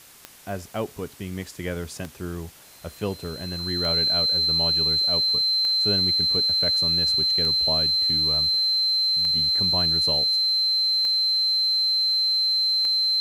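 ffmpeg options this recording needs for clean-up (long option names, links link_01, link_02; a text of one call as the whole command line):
ffmpeg -i in.wav -af "adeclick=threshold=4,bandreject=frequency=4100:width=30,afwtdn=0.004" out.wav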